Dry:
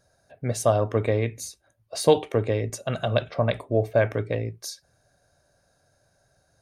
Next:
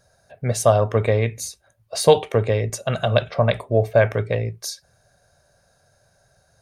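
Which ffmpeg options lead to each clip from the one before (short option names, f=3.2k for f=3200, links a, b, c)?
-af "equalizer=f=300:w=3.4:g=-10.5,volume=5.5dB"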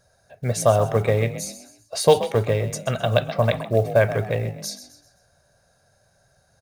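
-filter_complex "[0:a]acrusher=bits=8:mode=log:mix=0:aa=0.000001,asplit=5[a][b][c][d][e];[b]adelay=129,afreqshift=45,volume=-12.5dB[f];[c]adelay=258,afreqshift=90,volume=-20.5dB[g];[d]adelay=387,afreqshift=135,volume=-28.4dB[h];[e]adelay=516,afreqshift=180,volume=-36.4dB[i];[a][f][g][h][i]amix=inputs=5:normalize=0,volume=-1.5dB"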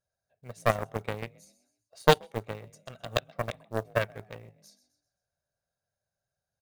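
-af "aeval=exprs='0.75*(cos(1*acos(clip(val(0)/0.75,-1,1)))-cos(1*PI/2))+0.237*(cos(3*acos(clip(val(0)/0.75,-1,1)))-cos(3*PI/2))':c=same,volume=-1dB"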